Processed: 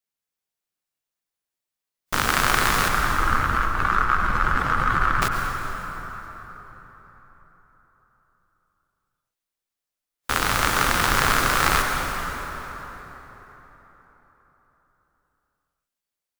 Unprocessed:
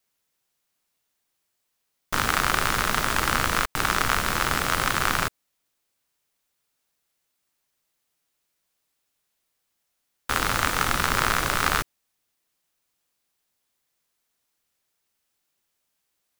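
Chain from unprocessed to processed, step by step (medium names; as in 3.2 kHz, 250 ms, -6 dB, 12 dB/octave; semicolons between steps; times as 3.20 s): 2.88–5.22 s: spectral contrast enhancement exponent 2.2; spectral noise reduction 14 dB; plate-style reverb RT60 4.3 s, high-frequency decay 0.6×, pre-delay 85 ms, DRR 2 dB; trim +1.5 dB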